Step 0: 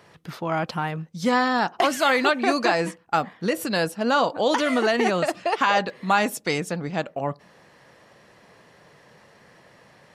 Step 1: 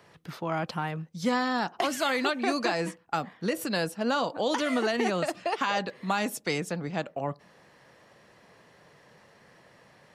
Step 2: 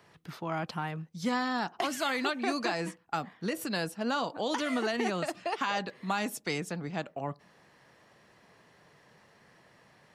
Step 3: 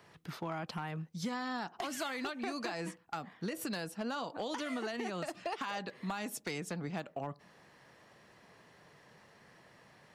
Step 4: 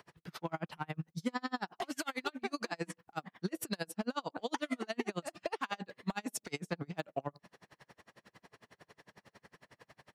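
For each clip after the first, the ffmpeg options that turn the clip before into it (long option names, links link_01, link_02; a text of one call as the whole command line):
ffmpeg -i in.wav -filter_complex "[0:a]acrossover=split=330|3000[link_01][link_02][link_03];[link_02]acompressor=threshold=-23dB:ratio=2.5[link_04];[link_01][link_04][link_03]amix=inputs=3:normalize=0,volume=-4dB" out.wav
ffmpeg -i in.wav -af "equalizer=frequency=530:width=4:gain=-4,volume=-3dB" out.wav
ffmpeg -i in.wav -af "acompressor=threshold=-34dB:ratio=10,volume=29dB,asoftclip=hard,volume=-29dB" out.wav
ffmpeg -i in.wav -af "aeval=exprs='val(0)*pow(10,-37*(0.5-0.5*cos(2*PI*11*n/s))/20)':channel_layout=same,volume=6.5dB" out.wav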